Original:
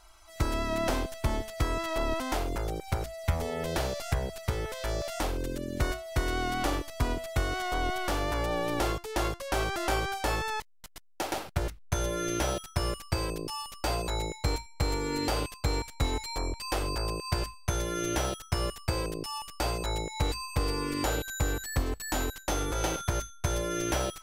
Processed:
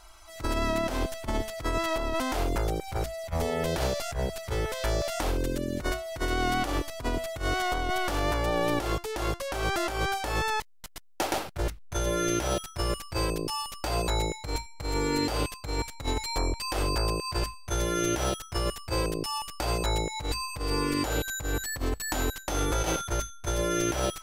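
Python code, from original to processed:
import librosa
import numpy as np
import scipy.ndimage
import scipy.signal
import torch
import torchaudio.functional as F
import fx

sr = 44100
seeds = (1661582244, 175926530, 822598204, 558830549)

y = fx.over_compress(x, sr, threshold_db=-30.0, ratio=-0.5)
y = F.gain(torch.from_numpy(y), 3.0).numpy()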